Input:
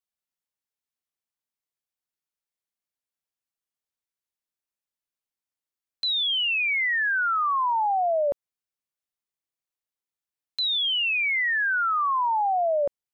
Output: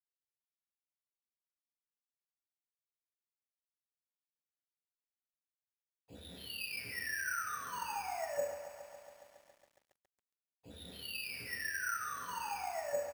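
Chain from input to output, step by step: median filter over 41 samples; low shelf 94 Hz +8 dB; comb 4.2 ms, depth 39%; compressor 12:1, threshold -32 dBFS, peak gain reduction 8.5 dB; flange 1.1 Hz, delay 8.4 ms, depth 8.9 ms, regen +21%; early reflections 26 ms -16.5 dB, 66 ms -18 dB; reverb RT60 0.85 s, pre-delay 47 ms; careless resampling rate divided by 6×, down filtered, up hold; lo-fi delay 0.138 s, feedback 80%, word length 10-bit, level -12.5 dB; gain -1.5 dB

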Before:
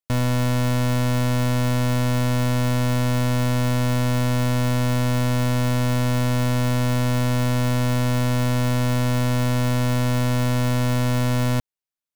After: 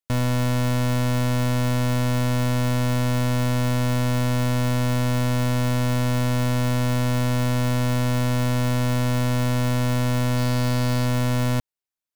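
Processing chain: 10.37–11.06 bell 4600 Hz +6 dB 0.28 oct; gain -1 dB

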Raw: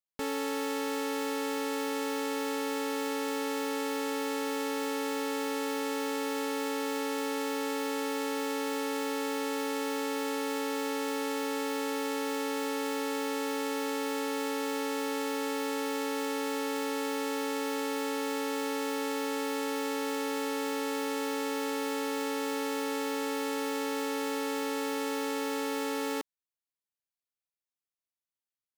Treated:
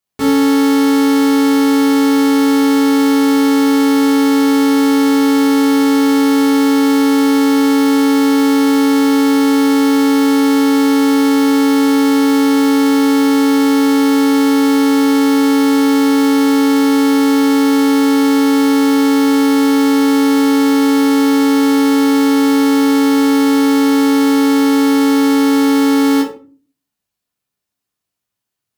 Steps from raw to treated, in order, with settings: HPF 81 Hz; low shelf 130 Hz +10.5 dB; shoebox room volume 270 m³, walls furnished, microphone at 3.3 m; gain +8.5 dB

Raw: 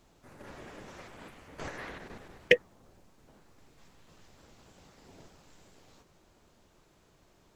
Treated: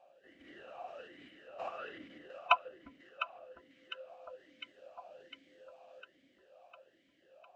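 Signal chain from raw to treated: band-swap scrambler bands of 500 Hz; echo with dull and thin repeats by turns 0.352 s, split 910 Hz, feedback 78%, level -7.5 dB; vowel sweep a-i 1.2 Hz; gain +8.5 dB

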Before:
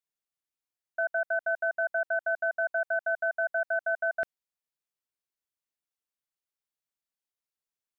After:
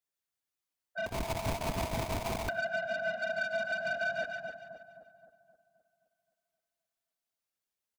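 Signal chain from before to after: phase scrambler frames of 50 ms; limiter -22.5 dBFS, peak gain reduction 6 dB; soft clip -30.5 dBFS, distortion -12 dB; split-band echo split 1100 Hz, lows 0.262 s, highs 0.143 s, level -4 dB; 1.06–2.49 sample-rate reducer 1600 Hz, jitter 20%; frequency-shifting echo 98 ms, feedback 30%, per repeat +61 Hz, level -21.5 dB

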